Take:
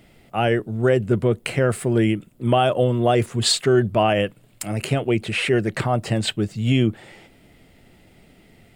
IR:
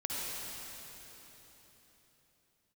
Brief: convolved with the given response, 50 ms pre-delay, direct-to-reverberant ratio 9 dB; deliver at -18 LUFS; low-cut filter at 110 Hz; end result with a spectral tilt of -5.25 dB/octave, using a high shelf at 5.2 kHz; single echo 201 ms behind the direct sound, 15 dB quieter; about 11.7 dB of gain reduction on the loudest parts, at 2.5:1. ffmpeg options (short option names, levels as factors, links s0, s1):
-filter_complex "[0:a]highpass=110,highshelf=f=5200:g=-3.5,acompressor=threshold=0.0251:ratio=2.5,aecho=1:1:201:0.178,asplit=2[s0][s1];[1:a]atrim=start_sample=2205,adelay=50[s2];[s1][s2]afir=irnorm=-1:irlink=0,volume=0.2[s3];[s0][s3]amix=inputs=2:normalize=0,volume=4.47"